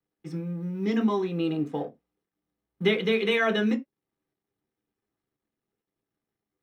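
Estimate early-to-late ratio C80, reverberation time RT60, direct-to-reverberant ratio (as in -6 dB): 29.0 dB, not exponential, 2.5 dB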